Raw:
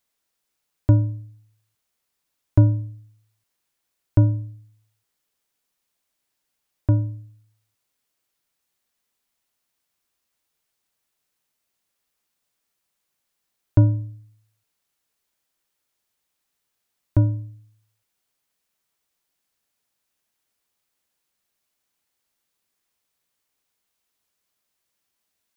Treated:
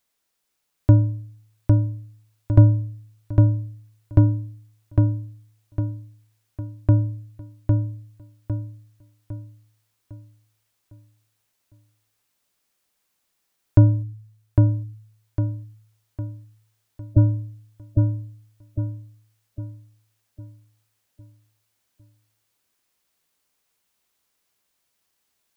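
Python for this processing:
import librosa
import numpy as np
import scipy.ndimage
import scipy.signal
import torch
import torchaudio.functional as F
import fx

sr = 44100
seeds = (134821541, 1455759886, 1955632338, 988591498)

y = fx.spec_gate(x, sr, threshold_db=-20, keep='strong', at=(14.02, 17.17), fade=0.02)
y = fx.echo_feedback(y, sr, ms=805, feedback_pct=43, wet_db=-3.0)
y = F.gain(torch.from_numpy(y), 2.0).numpy()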